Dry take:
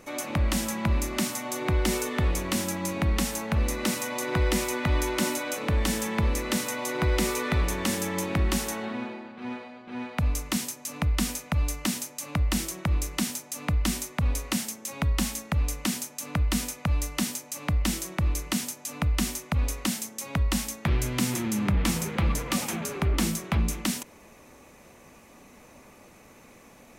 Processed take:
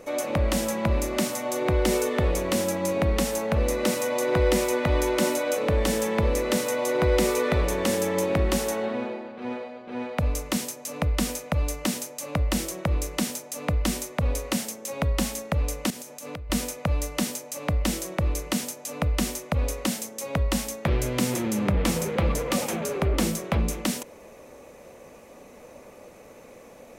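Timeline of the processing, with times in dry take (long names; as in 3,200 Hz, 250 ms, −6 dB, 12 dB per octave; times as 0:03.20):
0:15.90–0:16.50: downward compressor, threshold −36 dBFS
whole clip: parametric band 520 Hz +11.5 dB 0.81 octaves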